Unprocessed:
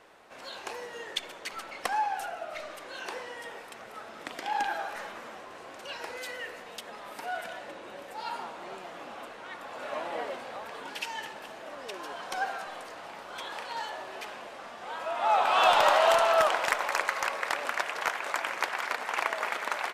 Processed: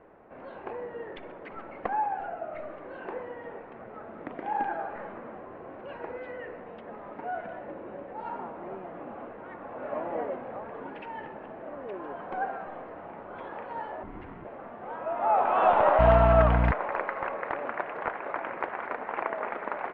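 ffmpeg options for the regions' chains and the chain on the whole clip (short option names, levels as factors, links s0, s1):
-filter_complex "[0:a]asettb=1/sr,asplit=3[s0][s1][s2];[s0]atrim=end=14.034[s3];[s1]atrim=start=14.03:end=14.45,asetpts=PTS-STARTPTS,afade=t=in:d=0.004:c=qsin,afade=t=out:st=0.416:d=0.004:c=qsin,equalizer=f=880:w=7.8:g=-7.5,aeval=exprs='val(0)*sin(2*PI*350*n/s)':c=same[s4];[s2]atrim=start=14.446[s5];[s3][s4]acrossfade=d=0.004:c1=hsin:c2=qsin[s6];[s6][s5]acrossfade=d=0.004:c1=qsin:c2=hsin,asettb=1/sr,asplit=3[s7][s8][s9];[s7]atrim=end=15.994[s10];[s8]atrim=start=15.99:end=16.72,asetpts=PTS-STARTPTS,afade=t=in:d=0.004:c=qsin,afade=t=out:st=0.726:d=0.004:c=qsin,aemphasis=mode=production:type=riaa,aecho=1:1:4.4:0.41,atrim=end_sample=32193,aeval=exprs='val(0)+0.0316*(sin(2*PI*60*n/s)+sin(2*PI*2*60*n/s)/2+sin(2*PI*3*60*n/s)/3+sin(2*PI*4*60*n/s)/4+sin(2*PI*5*60*n/s)/5)':c=same[s11];[s9]atrim=start=16.716[s12];[s10][s11]acrossfade=d=0.004:c1=hsin:c2=qsin[s13];[s13][s12]acrossfade=d=0.004:c1=qsin:c2=hsin,lowpass=f=2300:w=0.5412,lowpass=f=2300:w=1.3066,tiltshelf=f=890:g=9"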